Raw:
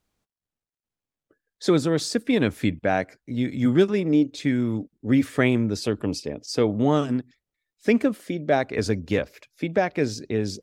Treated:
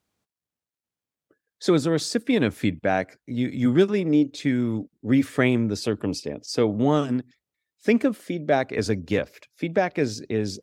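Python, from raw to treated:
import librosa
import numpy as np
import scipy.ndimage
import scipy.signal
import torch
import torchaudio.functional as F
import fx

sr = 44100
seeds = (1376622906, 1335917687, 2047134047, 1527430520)

y = scipy.signal.sosfilt(scipy.signal.butter(2, 78.0, 'highpass', fs=sr, output='sos'), x)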